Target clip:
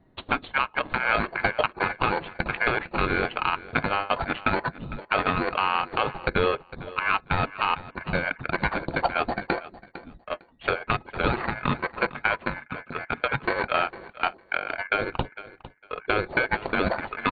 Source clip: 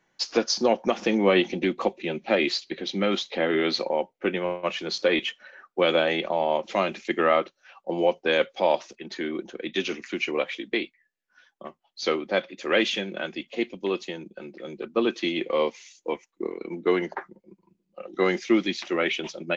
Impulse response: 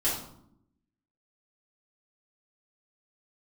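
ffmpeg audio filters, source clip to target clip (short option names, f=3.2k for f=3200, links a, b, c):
-filter_complex "[0:a]lowpass=f=1.5k:p=1,equalizer=f=370:w=0.39:g=-13.5,aecho=1:1:7:0.43,acompressor=threshold=-39dB:ratio=12,asetrate=49833,aresample=44100,aeval=exprs='val(0)*sin(2*PI*1900*n/s)':c=same,adynamicsmooth=sensitivity=6:basefreq=660,asplit=2[a][b];[b]aecho=0:1:454|908:0.126|0.0252[c];[a][c]amix=inputs=2:normalize=0,alimiter=level_in=36dB:limit=-1dB:release=50:level=0:latency=1,volume=-8.5dB" -ar 32000 -c:a ac3 -b:a 48k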